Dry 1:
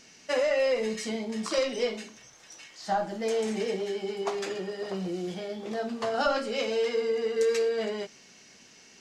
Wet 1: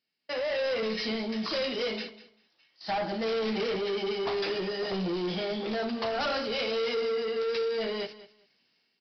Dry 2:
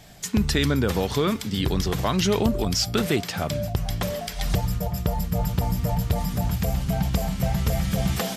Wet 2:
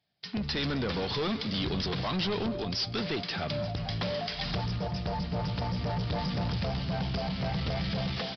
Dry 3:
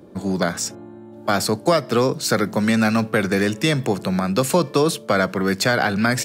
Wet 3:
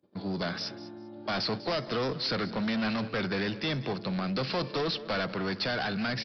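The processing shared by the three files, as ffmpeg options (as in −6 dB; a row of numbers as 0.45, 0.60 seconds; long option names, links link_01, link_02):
-af "agate=range=-25dB:threshold=-42dB:ratio=16:detection=peak,highpass=92,highshelf=frequency=3600:gain=11.5,dynaudnorm=framelen=200:gausssize=5:maxgain=15dB,aresample=11025,asoftclip=type=tanh:threshold=-19dB,aresample=44100,aecho=1:1:197|394:0.15|0.0284,volume=-8dB"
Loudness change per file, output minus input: −1.0, −7.0, −11.0 LU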